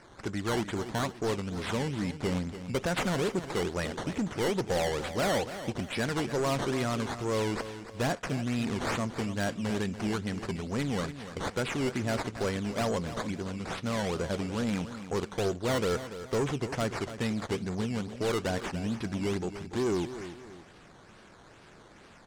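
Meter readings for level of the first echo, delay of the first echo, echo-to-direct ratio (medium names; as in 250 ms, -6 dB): -12.0 dB, 288 ms, -11.5 dB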